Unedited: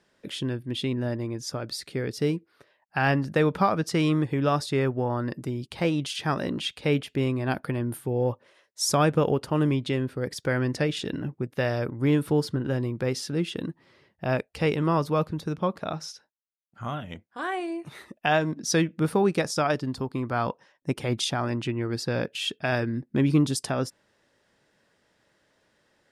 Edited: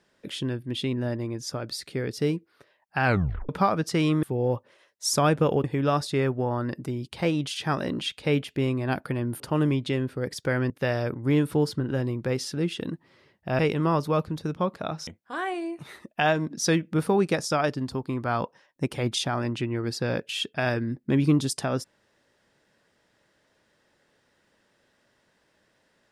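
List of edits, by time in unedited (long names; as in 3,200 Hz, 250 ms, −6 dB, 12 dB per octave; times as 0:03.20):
0:03.04: tape stop 0.45 s
0:07.99–0:09.40: move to 0:04.23
0:10.70–0:11.46: remove
0:14.35–0:14.61: remove
0:16.09–0:17.13: remove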